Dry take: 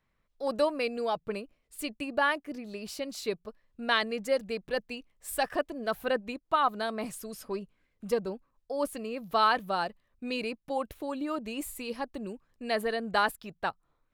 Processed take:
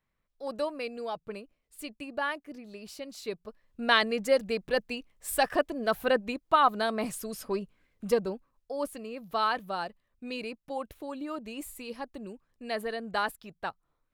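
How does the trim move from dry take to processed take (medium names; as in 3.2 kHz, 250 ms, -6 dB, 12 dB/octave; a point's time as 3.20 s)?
3.19 s -5 dB
3.81 s +3.5 dB
8.06 s +3.5 dB
9.00 s -3.5 dB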